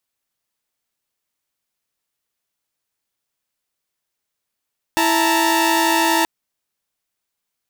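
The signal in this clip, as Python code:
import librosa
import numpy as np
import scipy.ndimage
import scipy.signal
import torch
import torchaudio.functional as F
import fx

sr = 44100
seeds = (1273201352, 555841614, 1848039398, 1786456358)

y = fx.chord(sr, length_s=1.28, notes=(64, 81, 82), wave='saw', level_db=-16.5)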